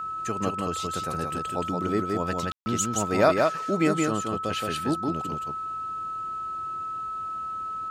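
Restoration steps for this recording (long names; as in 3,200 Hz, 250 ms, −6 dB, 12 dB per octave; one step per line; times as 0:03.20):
notch filter 1,300 Hz, Q 30
ambience match 0:02.52–0:02.66
echo removal 173 ms −3 dB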